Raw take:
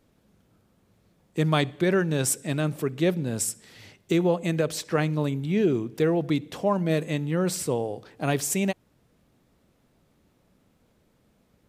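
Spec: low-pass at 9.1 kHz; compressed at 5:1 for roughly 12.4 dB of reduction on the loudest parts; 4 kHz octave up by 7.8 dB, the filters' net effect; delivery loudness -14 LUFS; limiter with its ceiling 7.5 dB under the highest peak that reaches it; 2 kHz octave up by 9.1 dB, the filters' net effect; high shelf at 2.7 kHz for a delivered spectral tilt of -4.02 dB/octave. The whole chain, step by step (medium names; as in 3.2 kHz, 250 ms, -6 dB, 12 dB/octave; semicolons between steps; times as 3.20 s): low-pass 9.1 kHz; peaking EQ 2 kHz +9 dB; treble shelf 2.7 kHz +3.5 dB; peaking EQ 4 kHz +4 dB; compression 5:1, threshold -30 dBFS; trim +21 dB; peak limiter -2 dBFS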